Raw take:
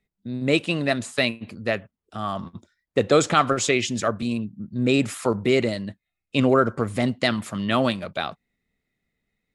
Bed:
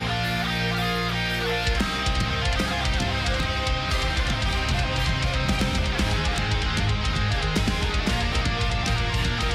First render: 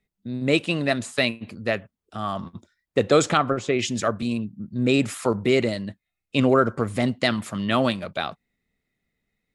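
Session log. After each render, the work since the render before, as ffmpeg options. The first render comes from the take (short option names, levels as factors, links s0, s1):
-filter_complex "[0:a]asettb=1/sr,asplit=3[s0][s1][s2];[s0]atrim=end=3.374[s3];[s1]atrim=start=3.37:end=3.79,asetpts=PTS-STARTPTS,afade=t=in:d=0.004:c=qsin,afade=t=out:st=0.416:d=0.004:c=qsin,lowpass=f=1100:p=1[s4];[s2]atrim=start=3.786[s5];[s3][s4]acrossfade=d=0.004:c1=hsin:c2=qsin[s6];[s6][s5]acrossfade=d=0.004:c1=qsin:c2=hsin"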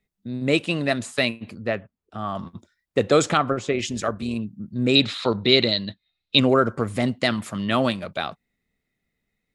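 -filter_complex "[0:a]asettb=1/sr,asplit=3[s0][s1][s2];[s0]atrim=end=1.584[s3];[s1]atrim=start=1.58:end=2.35,asetpts=PTS-STARTPTS,afade=t=in:d=0.004:c=qsin,afade=t=out:st=0.766:d=0.004:c=qsin,lowpass=f=2100:p=1[s4];[s2]atrim=start=2.346[s5];[s3][s4]acrossfade=d=0.004:c1=hsin:c2=qsin[s6];[s6][s5]acrossfade=d=0.004:c1=qsin:c2=hsin,asplit=3[s7][s8][s9];[s7]afade=t=out:st=3.71:d=0.02[s10];[s8]tremolo=f=160:d=0.4,afade=t=in:st=3.71:d=0.02,afade=t=out:st=4.35:d=0.02[s11];[s9]afade=t=in:st=4.35:d=0.02[s12];[s10][s11][s12]amix=inputs=3:normalize=0,asettb=1/sr,asplit=3[s13][s14][s15];[s13]atrim=end=4.954[s16];[s14]atrim=start=4.95:end=6.39,asetpts=PTS-STARTPTS,afade=t=in:d=0.004:c=qsin,afade=t=out:st=1.436:d=0.004:c=qsin,lowpass=f=3900:t=q:w=9.4[s17];[s15]atrim=start=6.386[s18];[s16][s17]acrossfade=d=0.004:c1=hsin:c2=qsin[s19];[s19][s18]acrossfade=d=0.004:c1=qsin:c2=hsin"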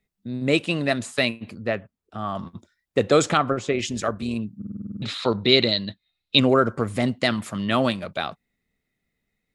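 -filter_complex "[0:a]asplit=10[s0][s1][s2][s3][s4][s5][s6][s7][s8][s9];[s0]atrim=end=4.622[s10];[s1]atrim=start=4.568:end=4.622[s11];[s2]atrim=start=4.568:end=4.622[s12];[s3]atrim=start=4.568:end=4.622[s13];[s4]atrim=start=4.568:end=4.622[s14];[s5]atrim=start=4.568:end=4.622[s15];[s6]atrim=start=4.568:end=4.622[s16];[s7]atrim=start=4.568:end=4.622[s17];[s8]atrim=start=4.568:end=4.622[s18];[s9]atrim=start=5.018[s19];[s10][s11]acrossfade=d=0.004:c1=hsin:c2=hsin[s20];[s20][s12]acrossfade=d=0.004:c1=hsin:c2=hsin[s21];[s21][s13]acrossfade=d=0.004:c1=hsin:c2=hsin[s22];[s22][s14]acrossfade=d=0.004:c1=hsin:c2=hsin[s23];[s23][s15]acrossfade=d=0.004:c1=hsin:c2=hsin[s24];[s24][s16]acrossfade=d=0.004:c1=hsin:c2=hsin[s25];[s25][s17]acrossfade=d=0.004:c1=hsin:c2=hsin[s26];[s26][s18]acrossfade=d=0.004:c1=hsin:c2=hsin[s27];[s27][s19]acrossfade=d=0.004:c1=hsin:c2=hsin"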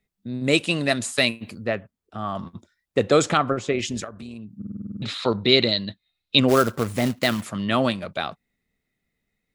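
-filter_complex "[0:a]asettb=1/sr,asplit=3[s0][s1][s2];[s0]atrim=end=0.444[s3];[s1]atrim=start=0.44:end=1.65,asetpts=PTS-STARTPTS,afade=t=in:d=0.004:c=qsin,afade=t=out:st=1.206:d=0.004:c=qsin,highshelf=f=4300:g=9.5[s4];[s2]atrim=start=1.646[s5];[s3][s4]acrossfade=d=0.004:c1=hsin:c2=qsin[s6];[s6][s5]acrossfade=d=0.004:c1=qsin:c2=hsin,asplit=3[s7][s8][s9];[s7]afade=t=out:st=4.03:d=0.02[s10];[s8]acompressor=threshold=0.0178:ratio=4:attack=3.2:release=140:knee=1:detection=peak,afade=t=in:st=4.03:d=0.02,afade=t=out:st=4.56:d=0.02[s11];[s9]afade=t=in:st=4.56:d=0.02[s12];[s10][s11][s12]amix=inputs=3:normalize=0,asplit=3[s13][s14][s15];[s13]afade=t=out:st=6.48:d=0.02[s16];[s14]acrusher=bits=3:mode=log:mix=0:aa=0.000001,afade=t=in:st=6.48:d=0.02,afade=t=out:st=7.44:d=0.02[s17];[s15]afade=t=in:st=7.44:d=0.02[s18];[s16][s17][s18]amix=inputs=3:normalize=0"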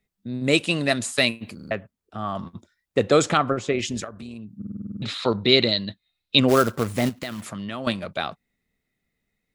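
-filter_complex "[0:a]asettb=1/sr,asplit=3[s0][s1][s2];[s0]atrim=end=7.094[s3];[s1]atrim=start=7.09:end=7.87,asetpts=PTS-STARTPTS,afade=t=in:d=0.004:c=qsin,afade=t=out:st=0.776:d=0.004:c=qsin,acompressor=threshold=0.0355:ratio=4:attack=3.2:release=140:knee=1:detection=peak[s4];[s2]atrim=start=7.866[s5];[s3][s4]acrossfade=d=0.004:c1=hsin:c2=qsin[s6];[s6][s5]acrossfade=d=0.004:c1=qsin:c2=hsin,asplit=5[s7][s8][s9][s10][s11];[s7]atrim=end=1.592[s12];[s8]atrim=start=1.548:end=1.592[s13];[s9]atrim=start=1.548:end=1.592[s14];[s10]atrim=start=1.548:end=1.592[s15];[s11]atrim=start=1.708[s16];[s12][s13]acrossfade=d=0.004:c1=hsin:c2=hsin[s17];[s17][s14]acrossfade=d=0.004:c1=hsin:c2=hsin[s18];[s18][s15]acrossfade=d=0.004:c1=hsin:c2=hsin[s19];[s19][s16]acrossfade=d=0.004:c1=hsin:c2=hsin"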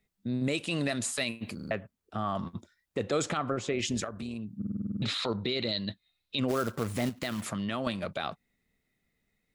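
-af "acompressor=threshold=0.0398:ratio=2,alimiter=limit=0.106:level=0:latency=1:release=26"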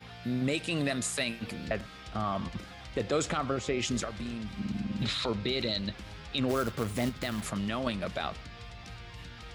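-filter_complex "[1:a]volume=0.0841[s0];[0:a][s0]amix=inputs=2:normalize=0"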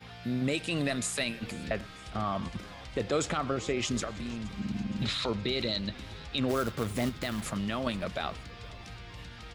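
-filter_complex "[0:a]asplit=5[s0][s1][s2][s3][s4];[s1]adelay=469,afreqshift=-130,volume=0.0891[s5];[s2]adelay=938,afreqshift=-260,volume=0.049[s6];[s3]adelay=1407,afreqshift=-390,volume=0.0269[s7];[s4]adelay=1876,afreqshift=-520,volume=0.0148[s8];[s0][s5][s6][s7][s8]amix=inputs=5:normalize=0"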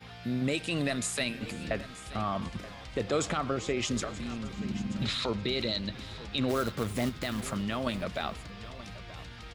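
-af "aecho=1:1:929:0.15"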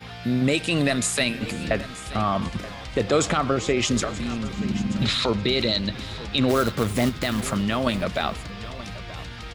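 -af "volume=2.66"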